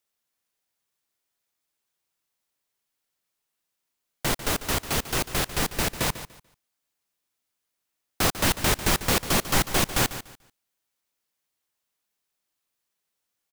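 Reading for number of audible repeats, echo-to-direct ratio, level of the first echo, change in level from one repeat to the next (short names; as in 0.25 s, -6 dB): 2, -13.0 dB, -13.0 dB, -13.0 dB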